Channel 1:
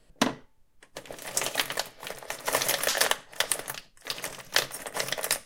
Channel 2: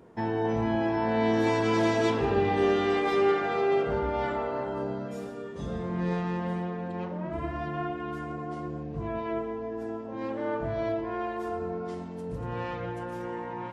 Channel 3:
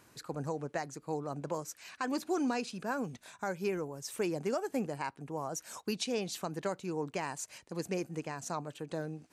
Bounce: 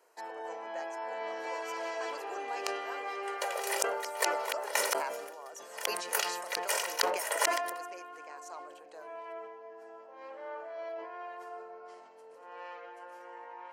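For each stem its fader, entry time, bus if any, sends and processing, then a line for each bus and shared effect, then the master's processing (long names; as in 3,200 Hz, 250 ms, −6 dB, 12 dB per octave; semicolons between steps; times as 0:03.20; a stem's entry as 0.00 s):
+2.0 dB, 2.45 s, no send, noise gate with hold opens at −52 dBFS; comb filter 2.1 ms, depth 95%; gate with flip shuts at −15 dBFS, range −41 dB
−8.5 dB, 0.00 s, no send, no processing
−8.5 dB, 0.00 s, no send, no processing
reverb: not used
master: high-pass filter 520 Hz 24 dB per octave; notch filter 3,600 Hz, Q 6.6; level that may fall only so fast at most 45 dB per second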